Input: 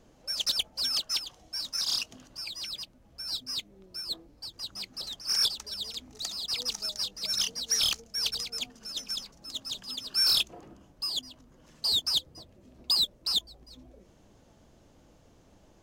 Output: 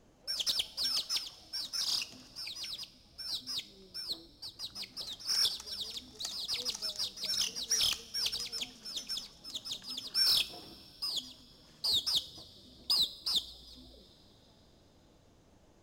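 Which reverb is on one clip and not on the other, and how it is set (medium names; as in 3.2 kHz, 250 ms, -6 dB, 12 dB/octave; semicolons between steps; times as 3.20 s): two-slope reverb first 0.51 s, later 4.1 s, from -16 dB, DRR 12.5 dB; trim -4 dB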